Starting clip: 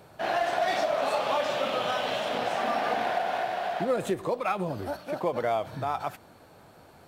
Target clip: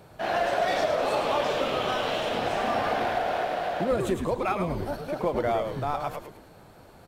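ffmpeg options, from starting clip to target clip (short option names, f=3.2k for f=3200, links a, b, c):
-filter_complex "[0:a]lowshelf=f=220:g=4.5,asplit=2[a][b];[b]asplit=5[c][d][e][f][g];[c]adelay=107,afreqshift=-130,volume=-6.5dB[h];[d]adelay=214,afreqshift=-260,volume=-14.5dB[i];[e]adelay=321,afreqshift=-390,volume=-22.4dB[j];[f]adelay=428,afreqshift=-520,volume=-30.4dB[k];[g]adelay=535,afreqshift=-650,volume=-38.3dB[l];[h][i][j][k][l]amix=inputs=5:normalize=0[m];[a][m]amix=inputs=2:normalize=0"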